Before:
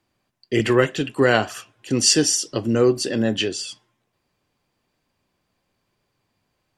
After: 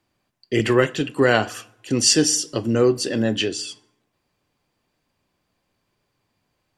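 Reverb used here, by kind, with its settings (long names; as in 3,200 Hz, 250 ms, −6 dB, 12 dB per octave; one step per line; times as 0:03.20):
feedback delay network reverb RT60 0.76 s, low-frequency decay 1.05×, high-frequency decay 0.7×, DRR 19 dB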